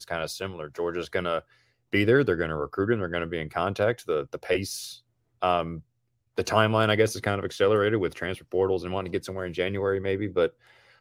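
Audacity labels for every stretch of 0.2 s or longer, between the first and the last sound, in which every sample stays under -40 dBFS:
1.400000	1.930000	silence
4.960000	5.420000	silence
5.800000	6.380000	silence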